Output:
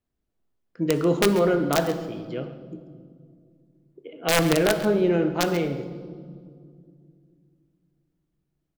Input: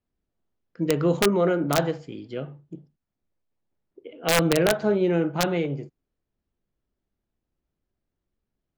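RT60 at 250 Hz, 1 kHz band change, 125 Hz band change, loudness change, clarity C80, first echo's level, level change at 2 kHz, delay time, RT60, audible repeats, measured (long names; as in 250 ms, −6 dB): 3.4 s, +0.5 dB, −0.5 dB, 0.0 dB, 11.0 dB, −15.0 dB, +0.5 dB, 136 ms, 2.2 s, 1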